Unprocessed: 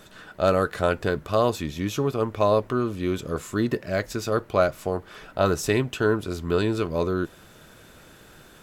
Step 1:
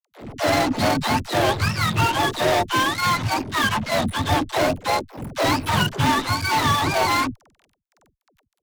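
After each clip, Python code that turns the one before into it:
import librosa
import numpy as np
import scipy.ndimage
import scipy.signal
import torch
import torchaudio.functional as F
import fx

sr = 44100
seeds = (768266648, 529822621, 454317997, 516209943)

y = fx.octave_mirror(x, sr, pivot_hz=620.0)
y = fx.fuzz(y, sr, gain_db=33.0, gate_db=-40.0)
y = fx.dispersion(y, sr, late='lows', ms=88.0, hz=320.0)
y = y * librosa.db_to_amplitude(-4.0)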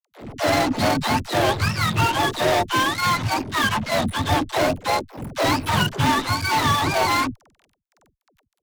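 y = x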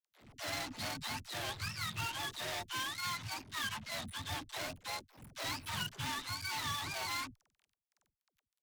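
y = fx.tone_stack(x, sr, knobs='5-5-5')
y = y * librosa.db_to_amplitude(-6.5)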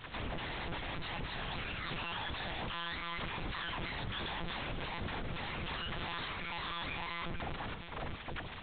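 y = np.sign(x) * np.sqrt(np.mean(np.square(x)))
y = fx.echo_feedback(y, sr, ms=470, feedback_pct=52, wet_db=-12)
y = fx.lpc_monotone(y, sr, seeds[0], pitch_hz=170.0, order=8)
y = y * librosa.db_to_amplitude(3.5)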